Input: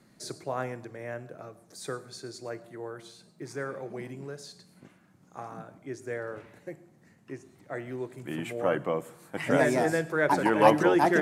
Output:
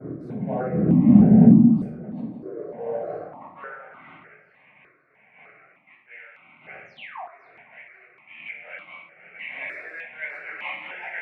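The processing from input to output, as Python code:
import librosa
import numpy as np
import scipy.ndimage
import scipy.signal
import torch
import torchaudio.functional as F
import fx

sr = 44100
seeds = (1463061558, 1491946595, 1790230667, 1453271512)

p1 = fx.dmg_wind(x, sr, seeds[0], corner_hz=210.0, level_db=-28.0)
p2 = fx.peak_eq(p1, sr, hz=230.0, db=12.0, octaves=2.4)
p3 = fx.leveller(p2, sr, passes=2)
p4 = fx.over_compress(p3, sr, threshold_db=-33.0, ratio=-1.0, at=(1.45, 2.64))
p5 = fx.filter_sweep_highpass(p4, sr, from_hz=230.0, to_hz=2300.0, start_s=1.93, end_s=4.37, q=4.9)
p6 = fx.spec_paint(p5, sr, seeds[1], shape='fall', start_s=6.85, length_s=0.38, low_hz=630.0, high_hz=7100.0, level_db=-24.0)
p7 = fx.env_lowpass(p6, sr, base_hz=1800.0, full_db=-15.5)
p8 = fx.air_absorb(p7, sr, metres=490.0)
p9 = p8 + fx.echo_alternate(p8, sr, ms=256, hz=890.0, feedback_pct=51, wet_db=-13, dry=0)
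p10 = fx.room_shoebox(p9, sr, seeds[2], volume_m3=890.0, walls='furnished', distance_m=7.3)
p11 = fx.phaser_held(p10, sr, hz=3.3, low_hz=840.0, high_hz=1700.0)
y = F.gain(torch.from_numpy(p11), -15.5).numpy()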